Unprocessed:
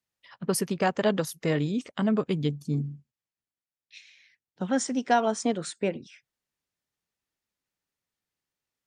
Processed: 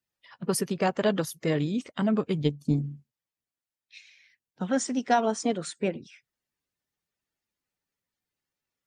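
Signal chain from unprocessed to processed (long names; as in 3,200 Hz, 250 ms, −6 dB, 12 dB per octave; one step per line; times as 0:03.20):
spectral magnitudes quantised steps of 15 dB
0:02.42–0:02.83: transient designer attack +7 dB, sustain −5 dB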